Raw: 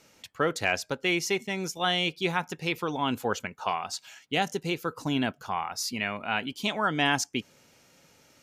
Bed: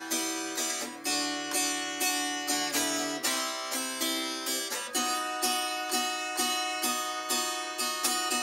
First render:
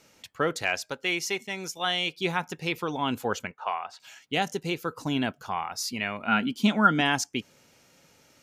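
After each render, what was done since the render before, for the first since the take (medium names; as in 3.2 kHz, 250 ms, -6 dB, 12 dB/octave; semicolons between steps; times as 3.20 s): 0.62–2.19 s: bass shelf 450 Hz -7.5 dB; 3.51–4.00 s: three-band isolator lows -16 dB, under 460 Hz, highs -19 dB, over 2.9 kHz; 6.27–7.01 s: small resonant body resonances 220/1400 Hz, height 13 dB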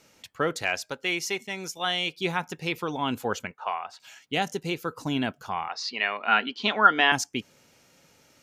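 5.68–7.12 s: cabinet simulation 400–5100 Hz, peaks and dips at 430 Hz +6 dB, 760 Hz +4 dB, 1.1 kHz +6 dB, 1.8 kHz +7 dB, 2.8 kHz +4 dB, 4.2 kHz +7 dB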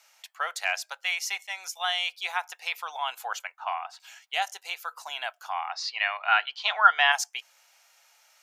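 elliptic high-pass 700 Hz, stop band 80 dB; treble shelf 9.8 kHz +4.5 dB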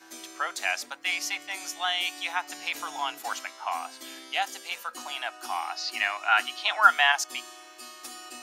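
add bed -13.5 dB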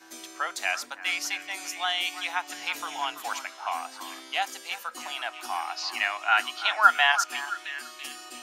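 repeats whose band climbs or falls 334 ms, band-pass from 1.2 kHz, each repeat 0.7 oct, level -10 dB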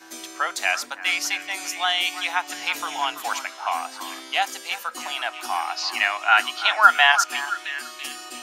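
trim +5.5 dB; peak limiter -1 dBFS, peak gain reduction 2 dB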